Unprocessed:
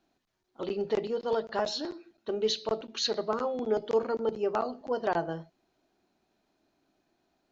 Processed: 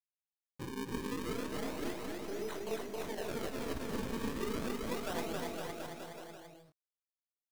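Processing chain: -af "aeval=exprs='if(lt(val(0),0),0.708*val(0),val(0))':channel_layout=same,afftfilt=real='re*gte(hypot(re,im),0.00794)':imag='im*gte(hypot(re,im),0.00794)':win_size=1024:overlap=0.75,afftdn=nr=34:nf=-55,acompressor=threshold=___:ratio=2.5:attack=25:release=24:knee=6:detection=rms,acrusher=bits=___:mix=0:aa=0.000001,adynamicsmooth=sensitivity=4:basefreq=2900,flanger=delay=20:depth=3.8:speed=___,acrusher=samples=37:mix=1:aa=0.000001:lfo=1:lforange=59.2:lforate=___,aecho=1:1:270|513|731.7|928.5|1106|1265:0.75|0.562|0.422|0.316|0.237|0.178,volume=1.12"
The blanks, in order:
0.00708, 7, 2.4, 0.31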